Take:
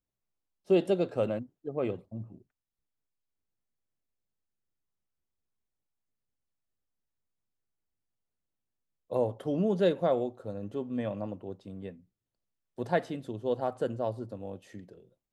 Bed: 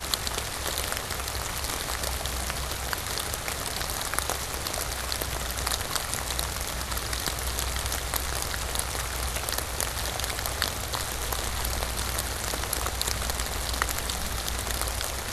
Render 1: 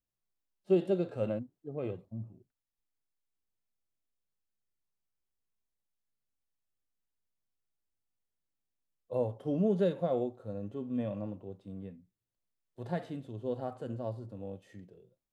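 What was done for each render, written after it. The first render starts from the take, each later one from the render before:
harmonic and percussive parts rebalanced percussive −13 dB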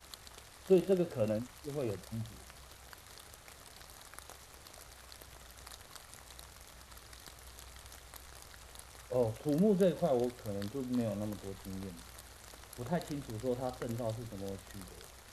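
mix in bed −22.5 dB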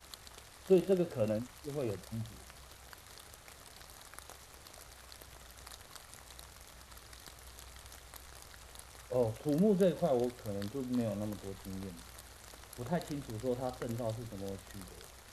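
no processing that can be heard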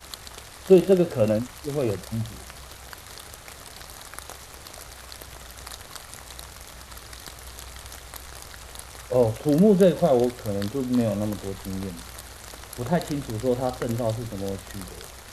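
level +11.5 dB

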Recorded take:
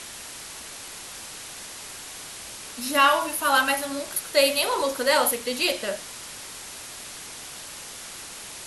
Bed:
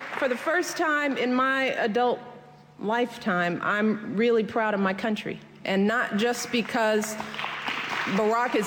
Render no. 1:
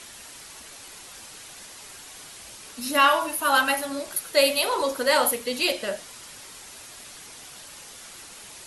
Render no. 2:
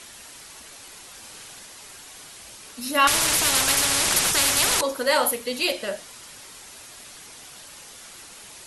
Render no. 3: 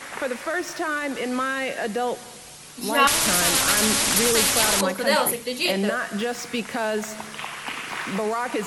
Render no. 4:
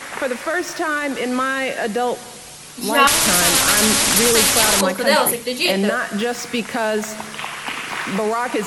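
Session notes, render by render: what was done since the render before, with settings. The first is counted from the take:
broadband denoise 6 dB, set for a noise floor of −40 dBFS
0:01.19–0:01.59: flutter between parallel walls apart 8.4 metres, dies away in 0.47 s; 0:03.07–0:04.81: every bin compressed towards the loudest bin 10 to 1
mix in bed −2 dB
level +5 dB; brickwall limiter −2 dBFS, peak gain reduction 1.5 dB

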